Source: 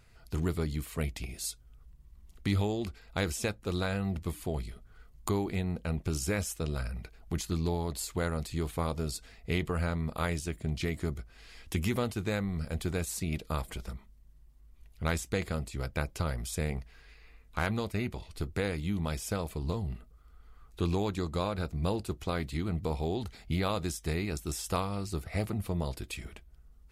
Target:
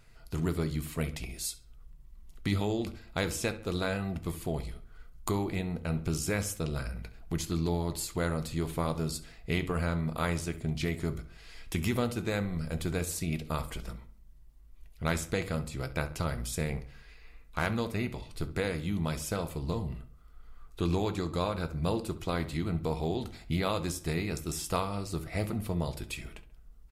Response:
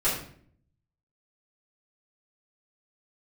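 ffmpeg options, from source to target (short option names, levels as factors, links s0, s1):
-filter_complex "[0:a]asplit=2[s0][s1];[s1]adelay=68,lowpass=f=3900:p=1,volume=0.168,asplit=2[s2][s3];[s3]adelay=68,lowpass=f=3900:p=1,volume=0.44,asplit=2[s4][s5];[s5]adelay=68,lowpass=f=3900:p=1,volume=0.44,asplit=2[s6][s7];[s7]adelay=68,lowpass=f=3900:p=1,volume=0.44[s8];[s0][s2][s4][s6][s8]amix=inputs=5:normalize=0,asplit=2[s9][s10];[1:a]atrim=start_sample=2205,asetrate=88200,aresample=44100,highshelf=f=11000:g=9[s11];[s10][s11]afir=irnorm=-1:irlink=0,volume=0.158[s12];[s9][s12]amix=inputs=2:normalize=0"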